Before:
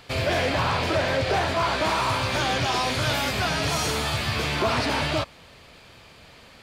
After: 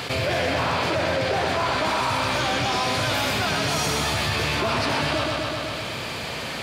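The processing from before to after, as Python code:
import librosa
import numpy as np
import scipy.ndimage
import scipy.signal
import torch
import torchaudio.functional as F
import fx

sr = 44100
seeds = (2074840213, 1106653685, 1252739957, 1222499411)

y = scipy.signal.sosfilt(scipy.signal.butter(2, 90.0, 'highpass', fs=sr, output='sos'), x)
y = fx.echo_feedback(y, sr, ms=126, feedback_pct=57, wet_db=-6.0)
y = fx.env_flatten(y, sr, amount_pct=70)
y = F.gain(torch.from_numpy(y), -2.5).numpy()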